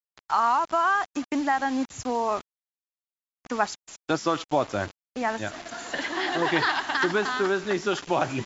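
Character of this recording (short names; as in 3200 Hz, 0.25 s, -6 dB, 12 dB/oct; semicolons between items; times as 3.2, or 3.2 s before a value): a quantiser's noise floor 6-bit, dither none; MP2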